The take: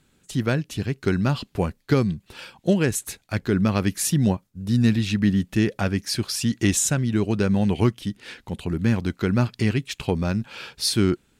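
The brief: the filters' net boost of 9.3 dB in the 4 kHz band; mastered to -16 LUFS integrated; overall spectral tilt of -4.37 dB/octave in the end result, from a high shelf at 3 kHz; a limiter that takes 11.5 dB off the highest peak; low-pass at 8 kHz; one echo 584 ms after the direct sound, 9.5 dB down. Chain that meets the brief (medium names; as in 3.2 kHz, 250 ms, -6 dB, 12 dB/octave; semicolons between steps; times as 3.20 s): low-pass 8 kHz; treble shelf 3 kHz +6 dB; peaking EQ 4 kHz +7 dB; peak limiter -13.5 dBFS; delay 584 ms -9.5 dB; trim +8.5 dB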